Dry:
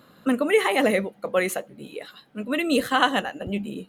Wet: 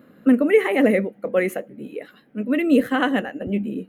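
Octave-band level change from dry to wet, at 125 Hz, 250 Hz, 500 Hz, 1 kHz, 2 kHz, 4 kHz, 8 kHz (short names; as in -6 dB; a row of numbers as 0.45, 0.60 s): +4.0, +6.5, +3.5, -4.0, -0.5, -7.0, -8.5 dB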